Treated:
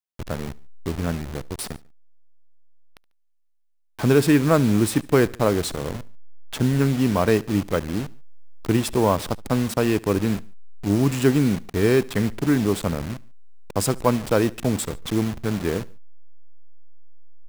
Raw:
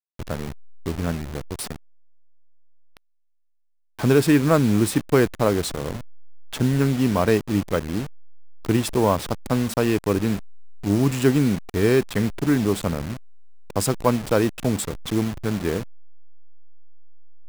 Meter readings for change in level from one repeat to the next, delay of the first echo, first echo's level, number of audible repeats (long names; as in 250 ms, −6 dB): −5.0 dB, 72 ms, −23.5 dB, 2